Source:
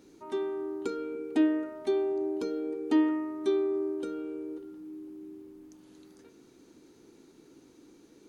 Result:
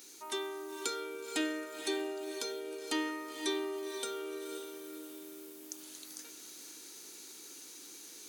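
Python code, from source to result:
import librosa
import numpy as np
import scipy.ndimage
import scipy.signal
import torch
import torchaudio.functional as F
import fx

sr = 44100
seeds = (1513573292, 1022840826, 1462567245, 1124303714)

y = np.diff(x, prepend=0.0)
y = fx.rider(y, sr, range_db=5, speed_s=2.0)
y = fx.echo_diffused(y, sr, ms=500, feedback_pct=41, wet_db=-7.0)
y = y * 10.0 ** (15.0 / 20.0)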